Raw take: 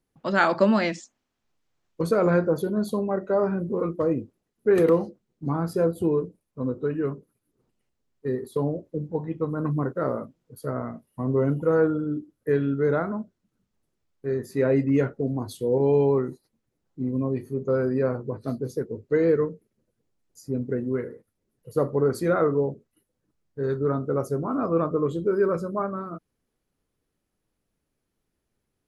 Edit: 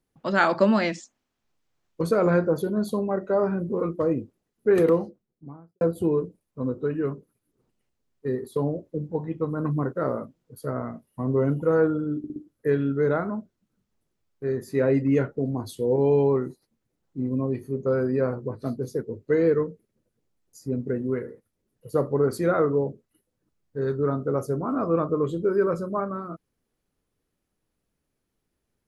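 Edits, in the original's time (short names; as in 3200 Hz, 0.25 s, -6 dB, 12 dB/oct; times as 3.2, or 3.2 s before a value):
4.73–5.81 studio fade out
12.18 stutter 0.06 s, 4 plays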